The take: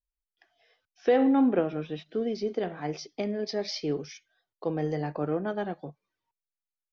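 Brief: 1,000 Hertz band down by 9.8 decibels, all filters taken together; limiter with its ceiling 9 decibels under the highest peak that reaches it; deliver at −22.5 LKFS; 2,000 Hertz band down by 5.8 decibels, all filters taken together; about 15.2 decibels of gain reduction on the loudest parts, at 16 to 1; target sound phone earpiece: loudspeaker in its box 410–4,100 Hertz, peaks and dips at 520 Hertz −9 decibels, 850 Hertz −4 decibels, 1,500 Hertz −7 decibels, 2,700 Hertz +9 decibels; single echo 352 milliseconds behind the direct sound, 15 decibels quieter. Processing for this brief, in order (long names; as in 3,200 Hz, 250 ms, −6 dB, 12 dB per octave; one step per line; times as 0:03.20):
parametric band 1,000 Hz −8 dB
parametric band 2,000 Hz −5 dB
downward compressor 16 to 1, threshold −35 dBFS
brickwall limiter −34 dBFS
loudspeaker in its box 410–4,100 Hz, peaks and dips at 520 Hz −9 dB, 850 Hz −4 dB, 1,500 Hz −7 dB, 2,700 Hz +9 dB
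single-tap delay 352 ms −15 dB
level +28 dB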